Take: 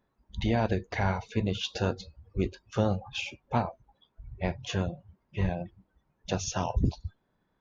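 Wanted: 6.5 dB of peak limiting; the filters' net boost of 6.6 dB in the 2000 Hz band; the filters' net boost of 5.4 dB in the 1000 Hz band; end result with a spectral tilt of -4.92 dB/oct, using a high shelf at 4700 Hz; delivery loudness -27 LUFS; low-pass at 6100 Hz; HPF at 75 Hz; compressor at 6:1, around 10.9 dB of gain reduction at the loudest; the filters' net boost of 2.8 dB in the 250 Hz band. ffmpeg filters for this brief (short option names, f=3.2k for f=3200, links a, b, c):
-af "highpass=75,lowpass=6.1k,equalizer=f=250:t=o:g=3.5,equalizer=f=1k:t=o:g=5.5,equalizer=f=2k:t=o:g=7.5,highshelf=f=4.7k:g=-3,acompressor=threshold=-30dB:ratio=6,volume=11dB,alimiter=limit=-12.5dB:level=0:latency=1"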